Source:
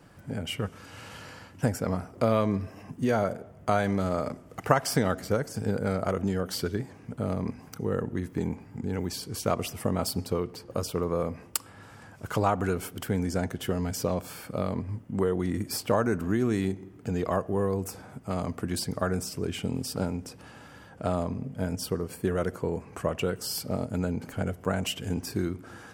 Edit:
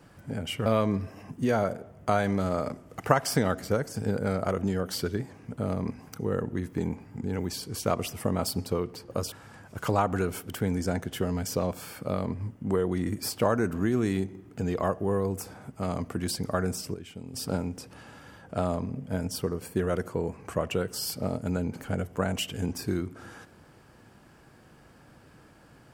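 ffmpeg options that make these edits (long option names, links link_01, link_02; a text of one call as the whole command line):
ffmpeg -i in.wav -filter_complex "[0:a]asplit=5[link_01][link_02][link_03][link_04][link_05];[link_01]atrim=end=0.662[link_06];[link_02]atrim=start=2.258:end=10.922[link_07];[link_03]atrim=start=11.798:end=19.422[link_08];[link_04]atrim=start=19.418:end=19.822,asetpts=PTS-STARTPTS,volume=-11dB[link_09];[link_05]atrim=start=19.818[link_10];[link_06][link_07]acrossfade=duration=0.004:curve1=hsin:curve2=hsin[link_11];[link_11][link_08]acrossfade=duration=0.004:curve1=hsin:curve2=hsin[link_12];[link_12][link_09]acrossfade=duration=0.004:curve1=hsin:curve2=hsin[link_13];[link_13][link_10]acrossfade=duration=0.004:curve1=hsin:curve2=hsin" out.wav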